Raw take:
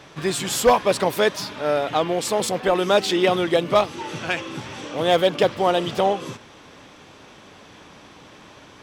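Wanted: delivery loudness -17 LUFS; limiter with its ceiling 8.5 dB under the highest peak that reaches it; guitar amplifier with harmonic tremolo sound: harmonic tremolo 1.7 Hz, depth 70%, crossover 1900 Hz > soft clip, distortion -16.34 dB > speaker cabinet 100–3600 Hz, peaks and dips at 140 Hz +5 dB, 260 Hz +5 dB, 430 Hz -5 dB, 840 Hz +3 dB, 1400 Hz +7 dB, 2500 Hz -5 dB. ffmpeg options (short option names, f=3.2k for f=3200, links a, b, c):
-filter_complex "[0:a]alimiter=limit=-15dB:level=0:latency=1,acrossover=split=1900[a][b];[a]aeval=exprs='val(0)*(1-0.7/2+0.7/2*cos(2*PI*1.7*n/s))':c=same[c];[b]aeval=exprs='val(0)*(1-0.7/2-0.7/2*cos(2*PI*1.7*n/s))':c=same[d];[c][d]amix=inputs=2:normalize=0,asoftclip=threshold=-20.5dB,highpass=100,equalizer=f=140:t=q:w=4:g=5,equalizer=f=260:t=q:w=4:g=5,equalizer=f=430:t=q:w=4:g=-5,equalizer=f=840:t=q:w=4:g=3,equalizer=f=1.4k:t=q:w=4:g=7,equalizer=f=2.5k:t=q:w=4:g=-5,lowpass=f=3.6k:w=0.5412,lowpass=f=3.6k:w=1.3066,volume=14dB"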